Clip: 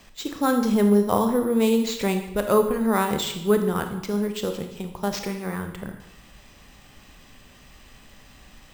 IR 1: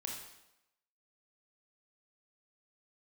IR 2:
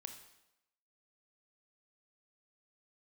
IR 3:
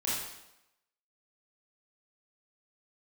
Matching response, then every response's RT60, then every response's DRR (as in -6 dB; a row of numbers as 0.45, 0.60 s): 2; 0.90, 0.90, 0.90 s; -0.5, 6.0, -8.0 dB